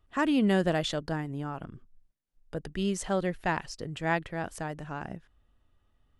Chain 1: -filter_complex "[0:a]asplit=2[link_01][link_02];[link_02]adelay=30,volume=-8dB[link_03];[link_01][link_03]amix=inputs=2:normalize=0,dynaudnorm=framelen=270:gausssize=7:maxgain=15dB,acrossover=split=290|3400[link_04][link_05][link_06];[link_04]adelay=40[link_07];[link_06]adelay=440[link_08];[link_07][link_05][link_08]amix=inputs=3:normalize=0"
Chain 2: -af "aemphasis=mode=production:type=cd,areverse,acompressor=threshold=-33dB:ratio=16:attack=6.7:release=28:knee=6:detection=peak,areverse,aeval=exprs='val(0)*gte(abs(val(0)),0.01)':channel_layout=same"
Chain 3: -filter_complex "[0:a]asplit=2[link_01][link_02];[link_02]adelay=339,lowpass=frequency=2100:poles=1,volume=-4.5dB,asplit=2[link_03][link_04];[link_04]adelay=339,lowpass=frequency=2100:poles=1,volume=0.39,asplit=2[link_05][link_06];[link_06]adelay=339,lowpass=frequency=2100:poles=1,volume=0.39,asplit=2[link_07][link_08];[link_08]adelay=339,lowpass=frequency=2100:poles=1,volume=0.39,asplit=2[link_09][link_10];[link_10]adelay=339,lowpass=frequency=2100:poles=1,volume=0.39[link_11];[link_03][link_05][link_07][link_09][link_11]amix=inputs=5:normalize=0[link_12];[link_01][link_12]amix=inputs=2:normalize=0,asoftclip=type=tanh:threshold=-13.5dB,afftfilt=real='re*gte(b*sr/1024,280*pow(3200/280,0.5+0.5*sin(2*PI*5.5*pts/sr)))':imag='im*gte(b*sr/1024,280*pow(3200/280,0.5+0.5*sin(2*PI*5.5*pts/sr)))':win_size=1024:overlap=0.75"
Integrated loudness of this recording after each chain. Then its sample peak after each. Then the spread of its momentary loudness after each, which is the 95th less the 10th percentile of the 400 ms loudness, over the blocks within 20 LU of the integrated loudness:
−22.5, −37.0, −37.0 LKFS; −2.5, −20.0, −15.0 dBFS; 13, 10, 18 LU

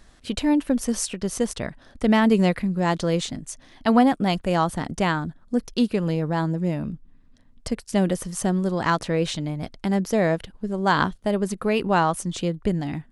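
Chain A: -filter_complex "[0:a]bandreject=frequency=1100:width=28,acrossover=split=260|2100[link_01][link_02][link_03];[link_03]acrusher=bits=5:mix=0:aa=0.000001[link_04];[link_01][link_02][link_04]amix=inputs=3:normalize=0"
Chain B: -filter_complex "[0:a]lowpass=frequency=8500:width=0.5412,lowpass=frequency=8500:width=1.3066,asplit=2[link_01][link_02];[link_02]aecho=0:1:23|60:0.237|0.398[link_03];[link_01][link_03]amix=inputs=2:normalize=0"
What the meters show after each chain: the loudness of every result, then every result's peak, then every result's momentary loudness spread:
−24.0, −23.0 LKFS; −5.0, −4.0 dBFS; 11, 11 LU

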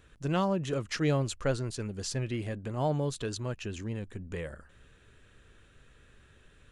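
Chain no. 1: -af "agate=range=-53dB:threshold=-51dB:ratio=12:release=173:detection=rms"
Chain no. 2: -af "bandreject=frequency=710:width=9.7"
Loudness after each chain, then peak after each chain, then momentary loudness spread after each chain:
−33.0, −33.0 LKFS; −17.5, −17.5 dBFS; 11, 11 LU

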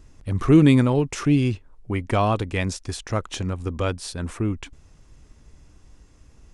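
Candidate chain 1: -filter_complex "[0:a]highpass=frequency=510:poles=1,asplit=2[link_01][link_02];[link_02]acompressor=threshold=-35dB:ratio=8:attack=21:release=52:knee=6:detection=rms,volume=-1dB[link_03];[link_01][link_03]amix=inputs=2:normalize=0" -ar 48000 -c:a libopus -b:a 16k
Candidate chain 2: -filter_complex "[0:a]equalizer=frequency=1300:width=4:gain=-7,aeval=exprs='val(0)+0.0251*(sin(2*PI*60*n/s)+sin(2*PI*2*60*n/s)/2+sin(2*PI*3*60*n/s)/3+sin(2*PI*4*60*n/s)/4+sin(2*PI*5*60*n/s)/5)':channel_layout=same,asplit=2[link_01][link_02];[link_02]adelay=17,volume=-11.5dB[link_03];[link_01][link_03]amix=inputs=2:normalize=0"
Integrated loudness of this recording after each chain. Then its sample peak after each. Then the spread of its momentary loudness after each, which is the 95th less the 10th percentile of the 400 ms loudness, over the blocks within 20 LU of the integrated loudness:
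−26.5, −22.5 LKFS; −9.0, −4.0 dBFS; 12, 17 LU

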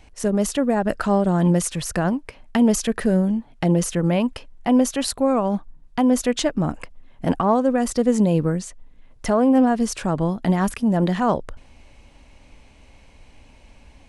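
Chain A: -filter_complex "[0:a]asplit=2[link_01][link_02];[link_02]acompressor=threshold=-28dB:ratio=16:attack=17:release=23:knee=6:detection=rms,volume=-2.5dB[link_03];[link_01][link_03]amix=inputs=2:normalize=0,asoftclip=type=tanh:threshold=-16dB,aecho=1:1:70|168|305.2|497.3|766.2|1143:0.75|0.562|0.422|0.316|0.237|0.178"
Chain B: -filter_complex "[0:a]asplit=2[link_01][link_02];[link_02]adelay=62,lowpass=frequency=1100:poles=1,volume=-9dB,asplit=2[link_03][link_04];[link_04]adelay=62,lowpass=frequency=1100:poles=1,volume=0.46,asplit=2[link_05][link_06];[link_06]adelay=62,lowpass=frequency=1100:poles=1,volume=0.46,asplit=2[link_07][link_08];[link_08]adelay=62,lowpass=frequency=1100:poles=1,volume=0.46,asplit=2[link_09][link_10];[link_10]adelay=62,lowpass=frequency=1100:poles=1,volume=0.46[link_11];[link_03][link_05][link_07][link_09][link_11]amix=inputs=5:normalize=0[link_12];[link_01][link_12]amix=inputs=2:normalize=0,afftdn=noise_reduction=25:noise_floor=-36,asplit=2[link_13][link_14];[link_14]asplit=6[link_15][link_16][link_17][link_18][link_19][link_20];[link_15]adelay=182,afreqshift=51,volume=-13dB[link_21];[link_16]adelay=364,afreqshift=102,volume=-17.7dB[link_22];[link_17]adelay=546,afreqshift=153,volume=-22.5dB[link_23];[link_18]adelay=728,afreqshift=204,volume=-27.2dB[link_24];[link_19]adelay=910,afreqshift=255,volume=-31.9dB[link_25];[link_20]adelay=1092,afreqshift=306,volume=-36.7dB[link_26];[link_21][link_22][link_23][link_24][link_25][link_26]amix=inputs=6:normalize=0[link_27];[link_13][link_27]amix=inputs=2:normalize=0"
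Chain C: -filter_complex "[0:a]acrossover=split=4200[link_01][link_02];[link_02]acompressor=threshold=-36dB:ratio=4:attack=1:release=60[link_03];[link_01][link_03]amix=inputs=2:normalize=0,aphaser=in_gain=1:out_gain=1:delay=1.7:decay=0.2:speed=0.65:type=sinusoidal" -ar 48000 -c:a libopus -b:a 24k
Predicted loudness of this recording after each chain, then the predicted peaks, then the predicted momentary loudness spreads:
−19.5, −20.5, −20.5 LKFS; −7.0, −5.5, −5.5 dBFS; 9, 10, 10 LU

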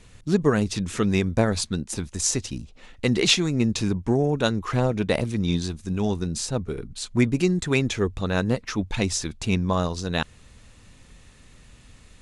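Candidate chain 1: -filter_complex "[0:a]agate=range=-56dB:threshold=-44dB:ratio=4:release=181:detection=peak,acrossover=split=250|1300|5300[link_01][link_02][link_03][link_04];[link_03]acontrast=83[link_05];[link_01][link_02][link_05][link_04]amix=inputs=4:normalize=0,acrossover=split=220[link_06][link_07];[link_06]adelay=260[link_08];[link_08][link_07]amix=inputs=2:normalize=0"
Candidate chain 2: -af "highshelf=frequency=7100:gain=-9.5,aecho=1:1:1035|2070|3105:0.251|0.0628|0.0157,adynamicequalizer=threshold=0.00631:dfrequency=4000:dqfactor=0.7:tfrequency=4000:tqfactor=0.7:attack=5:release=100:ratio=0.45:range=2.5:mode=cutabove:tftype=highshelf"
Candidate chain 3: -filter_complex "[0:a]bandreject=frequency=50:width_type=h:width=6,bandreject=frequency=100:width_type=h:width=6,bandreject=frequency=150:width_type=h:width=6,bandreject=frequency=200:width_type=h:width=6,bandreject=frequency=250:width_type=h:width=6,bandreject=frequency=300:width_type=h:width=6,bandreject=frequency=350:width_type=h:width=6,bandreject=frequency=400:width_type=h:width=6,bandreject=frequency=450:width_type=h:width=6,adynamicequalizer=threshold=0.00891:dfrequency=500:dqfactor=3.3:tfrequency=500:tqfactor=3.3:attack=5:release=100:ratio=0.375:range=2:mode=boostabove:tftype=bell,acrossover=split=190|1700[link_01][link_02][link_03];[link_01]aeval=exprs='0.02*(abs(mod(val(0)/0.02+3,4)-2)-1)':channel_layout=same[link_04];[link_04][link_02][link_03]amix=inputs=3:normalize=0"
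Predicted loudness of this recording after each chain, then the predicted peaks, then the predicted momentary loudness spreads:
−23.5, −25.0, −26.0 LKFS; −2.0, −6.5, −5.0 dBFS; 9, 13, 9 LU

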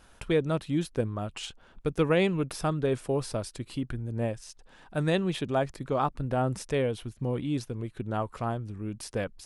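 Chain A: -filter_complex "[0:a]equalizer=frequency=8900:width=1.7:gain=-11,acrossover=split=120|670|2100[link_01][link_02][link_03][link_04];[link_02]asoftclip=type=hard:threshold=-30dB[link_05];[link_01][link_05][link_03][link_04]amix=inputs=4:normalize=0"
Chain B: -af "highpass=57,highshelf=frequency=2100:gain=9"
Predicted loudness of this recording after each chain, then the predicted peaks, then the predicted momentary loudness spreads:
−33.0, −29.5 LKFS; −14.0, −10.5 dBFS; 8, 9 LU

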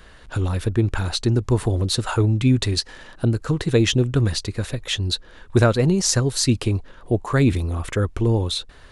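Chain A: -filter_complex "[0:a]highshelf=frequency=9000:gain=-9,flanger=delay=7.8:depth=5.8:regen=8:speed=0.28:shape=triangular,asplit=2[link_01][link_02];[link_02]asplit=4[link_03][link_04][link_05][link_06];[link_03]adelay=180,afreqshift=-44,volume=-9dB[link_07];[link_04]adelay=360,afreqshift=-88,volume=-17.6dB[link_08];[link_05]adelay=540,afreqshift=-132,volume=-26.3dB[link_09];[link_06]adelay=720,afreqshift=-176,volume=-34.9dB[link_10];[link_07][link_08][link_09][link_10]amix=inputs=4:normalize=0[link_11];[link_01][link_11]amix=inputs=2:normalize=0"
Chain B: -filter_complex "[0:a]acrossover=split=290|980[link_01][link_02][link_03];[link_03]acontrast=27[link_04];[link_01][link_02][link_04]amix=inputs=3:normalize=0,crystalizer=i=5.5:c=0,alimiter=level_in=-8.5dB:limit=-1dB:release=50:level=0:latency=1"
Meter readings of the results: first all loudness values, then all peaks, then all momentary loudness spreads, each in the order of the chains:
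−24.0, −20.0 LKFS; −6.0, −1.0 dBFS; 7, 15 LU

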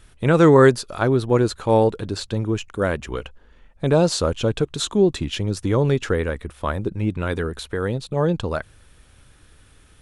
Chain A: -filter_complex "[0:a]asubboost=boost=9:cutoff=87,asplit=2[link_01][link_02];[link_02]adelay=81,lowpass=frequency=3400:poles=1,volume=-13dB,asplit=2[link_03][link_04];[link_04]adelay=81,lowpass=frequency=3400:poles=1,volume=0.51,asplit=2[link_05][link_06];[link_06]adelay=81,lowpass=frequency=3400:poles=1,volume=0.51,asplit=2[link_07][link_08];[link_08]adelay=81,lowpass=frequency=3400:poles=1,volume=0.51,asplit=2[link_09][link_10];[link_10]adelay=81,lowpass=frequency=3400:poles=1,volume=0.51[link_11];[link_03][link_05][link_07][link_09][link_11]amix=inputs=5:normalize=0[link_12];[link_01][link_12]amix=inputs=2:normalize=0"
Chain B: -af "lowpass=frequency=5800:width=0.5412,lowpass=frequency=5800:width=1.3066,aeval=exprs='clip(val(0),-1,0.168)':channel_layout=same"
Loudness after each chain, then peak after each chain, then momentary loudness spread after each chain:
−19.0, −21.5 LKFS; −2.0, −2.0 dBFS; 7, 10 LU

